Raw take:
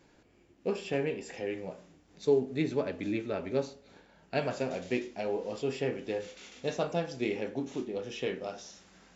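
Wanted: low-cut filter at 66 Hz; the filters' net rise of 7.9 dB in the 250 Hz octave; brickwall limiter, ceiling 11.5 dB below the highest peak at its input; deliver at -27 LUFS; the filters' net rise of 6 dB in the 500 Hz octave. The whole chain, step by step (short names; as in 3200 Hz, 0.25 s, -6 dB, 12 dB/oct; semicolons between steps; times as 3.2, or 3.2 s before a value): HPF 66 Hz; bell 250 Hz +8.5 dB; bell 500 Hz +4.5 dB; gain +4.5 dB; limiter -15.5 dBFS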